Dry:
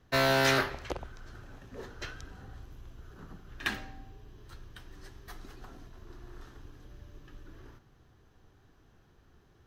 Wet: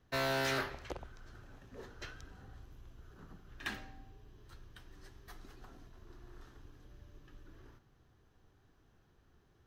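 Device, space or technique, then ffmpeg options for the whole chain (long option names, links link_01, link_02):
saturation between pre-emphasis and de-emphasis: -af "highshelf=frequency=2400:gain=10.5,asoftclip=type=tanh:threshold=-18dB,highshelf=frequency=2400:gain=-10.5,volume=-6dB"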